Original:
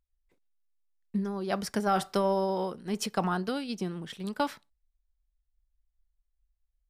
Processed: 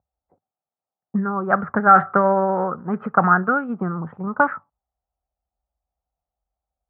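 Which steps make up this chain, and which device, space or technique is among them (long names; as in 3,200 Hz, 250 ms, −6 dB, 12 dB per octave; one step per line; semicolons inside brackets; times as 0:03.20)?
envelope filter bass rig (envelope-controlled low-pass 750–1,700 Hz up, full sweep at −25.5 dBFS; loudspeaker in its box 65–2,000 Hz, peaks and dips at 99 Hz +10 dB, 160 Hz +8 dB, 240 Hz +4 dB, 540 Hz +4 dB, 770 Hz +5 dB, 1,300 Hz +10 dB)
level +4 dB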